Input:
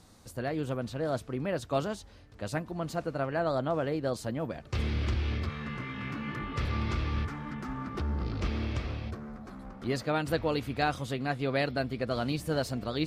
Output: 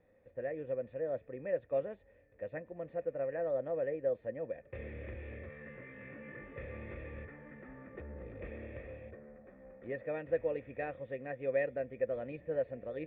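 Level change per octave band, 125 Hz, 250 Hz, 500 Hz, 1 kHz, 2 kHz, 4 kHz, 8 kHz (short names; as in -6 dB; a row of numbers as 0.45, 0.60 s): -16.5 dB, -14.0 dB, -2.0 dB, -14.5 dB, -9.5 dB, under -25 dB, under -30 dB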